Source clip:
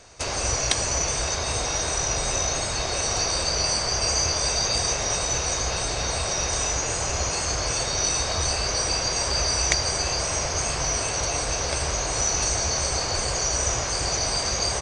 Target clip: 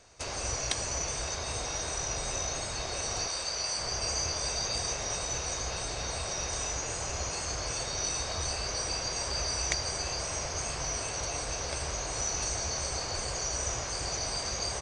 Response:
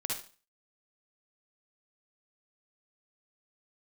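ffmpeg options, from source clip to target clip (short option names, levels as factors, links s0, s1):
-filter_complex "[0:a]asettb=1/sr,asplit=3[s0][s1][s2];[s0]atrim=end=3.274[s3];[s1]atrim=start=3.27:end=3.79,asetpts=PTS-STARTPTS,afade=t=in:d=0.004:c=qsin,afade=t=out:st=0.516:d=0.004:c=qsin,lowshelf=f=380:g=-10[s4];[s2]atrim=start=3.786[s5];[s3][s4]acrossfade=d=0.004:c1=hsin:c2=qsin[s6];[s6][s5]acrossfade=d=0.004:c1=qsin:c2=hsin,volume=0.376"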